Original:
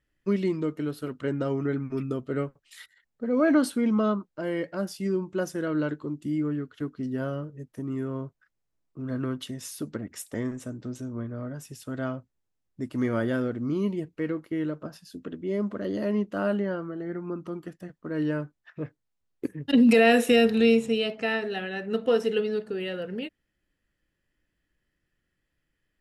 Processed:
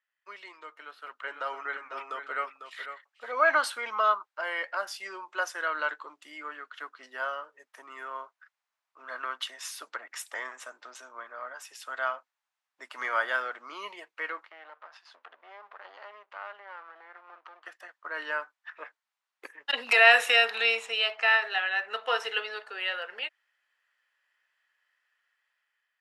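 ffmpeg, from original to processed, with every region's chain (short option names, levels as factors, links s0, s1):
-filter_complex "[0:a]asettb=1/sr,asplit=3[s0][s1][s2];[s0]atrim=end=0.744[s3];[s1]atrim=start=0.74:end=3.32,asetpts=PTS-STARTPTS,afade=t=in:d=0.004:c=qsin,afade=t=out:st=2.576:d=0.004:c=qsin,acrossover=split=3600[s4][s5];[s5]acompressor=threshold=0.001:ratio=4:attack=1:release=60[s6];[s4][s6]amix=inputs=2:normalize=0,aecho=1:1:499:0.335,atrim=end_sample=113778[s7];[s2]atrim=start=3.316[s8];[s3][s7]acrossfade=d=0.004:c1=hsin:c2=qsin[s9];[s9][s8]acrossfade=d=0.004:c1=qsin:c2=hsin,asettb=1/sr,asplit=3[s10][s11][s12];[s10]atrim=end=14.434[s13];[s11]atrim=start=14.43:end=17.66,asetpts=PTS-STARTPTS,afade=t=in:d=0.004:c=qsin,afade=t=out:st=3.226:d=0.004:c=qsin,aeval=exprs='if(lt(val(0),0),0.251*val(0),val(0))':c=same,highpass=250,lowpass=4000,acompressor=threshold=0.00316:ratio=2:attack=3.2:release=140:knee=1:detection=peak[s14];[s12]atrim=start=17.656[s15];[s13][s14]acrossfade=d=0.004:c1=hsin:c2=qsin[s16];[s16][s15]acrossfade=d=0.004:c1=qsin:c2=hsin,highpass=f=900:w=0.5412,highpass=f=900:w=1.3066,aemphasis=mode=reproduction:type=75kf,dynaudnorm=f=500:g=5:m=3.55"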